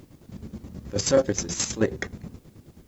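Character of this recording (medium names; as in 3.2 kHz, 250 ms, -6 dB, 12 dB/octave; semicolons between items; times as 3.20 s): chopped level 9.4 Hz, depth 65%, duty 45%; a quantiser's noise floor 12-bit, dither triangular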